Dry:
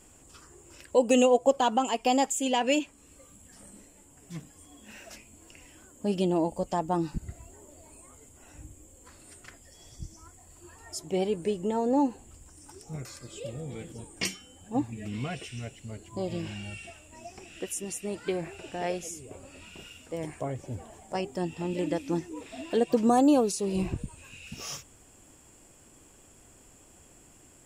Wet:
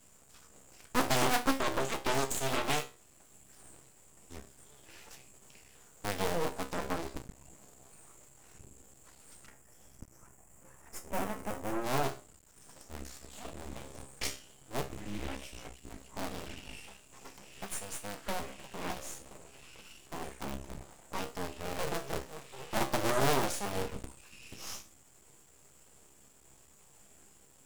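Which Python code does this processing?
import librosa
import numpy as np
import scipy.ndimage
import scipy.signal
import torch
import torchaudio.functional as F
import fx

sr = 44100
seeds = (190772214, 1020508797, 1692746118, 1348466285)

y = fx.cycle_switch(x, sr, every=2, mode='inverted')
y = fx.high_shelf(y, sr, hz=6600.0, db=6.0)
y = fx.hum_notches(y, sr, base_hz=60, count=10)
y = fx.comb_fb(y, sr, f0_hz=67.0, decay_s=0.31, harmonics='all', damping=0.0, mix_pct=80)
y = np.maximum(y, 0.0)
y = fx.peak_eq(y, sr, hz=4000.0, db=-13.0, octaves=0.98, at=(9.46, 11.84))
y = fx.doppler_dist(y, sr, depth_ms=0.6)
y = y * 10.0 ** (4.0 / 20.0)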